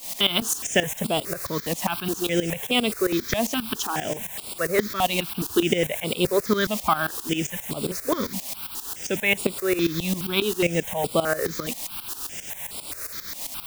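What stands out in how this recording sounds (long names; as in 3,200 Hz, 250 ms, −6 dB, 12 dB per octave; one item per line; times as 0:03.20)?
a quantiser's noise floor 6 bits, dither triangular
tremolo saw up 7.5 Hz, depth 85%
notches that jump at a steady rate 4.8 Hz 390–6,200 Hz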